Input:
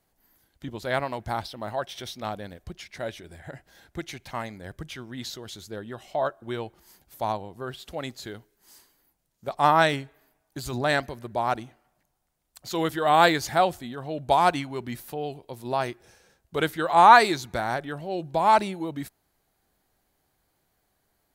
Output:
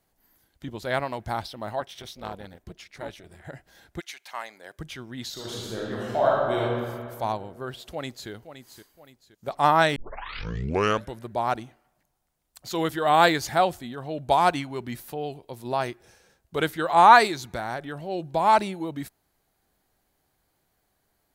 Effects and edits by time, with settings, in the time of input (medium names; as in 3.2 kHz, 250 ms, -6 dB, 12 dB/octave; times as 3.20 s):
1.80–3.45 s: AM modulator 280 Hz, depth 75%
3.99–4.78 s: high-pass 1.4 kHz -> 410 Hz
5.32–6.61 s: reverb throw, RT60 2.1 s, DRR -5.5 dB
7.90–8.30 s: echo throw 520 ms, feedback 40%, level -11 dB
9.96 s: tape start 1.27 s
17.27–17.99 s: compression 1.5:1, threshold -32 dBFS